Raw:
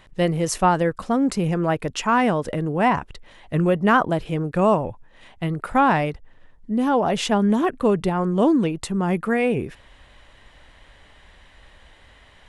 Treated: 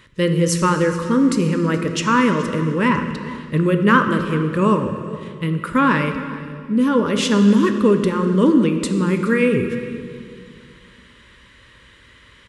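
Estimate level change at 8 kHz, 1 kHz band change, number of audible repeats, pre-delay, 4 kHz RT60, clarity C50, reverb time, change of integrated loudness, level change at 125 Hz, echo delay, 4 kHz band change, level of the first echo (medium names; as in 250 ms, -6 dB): +4.5 dB, -0.5 dB, 1, 3 ms, 1.8 s, 7.0 dB, 2.2 s, +3.5 dB, +4.5 dB, 423 ms, +4.5 dB, -19.5 dB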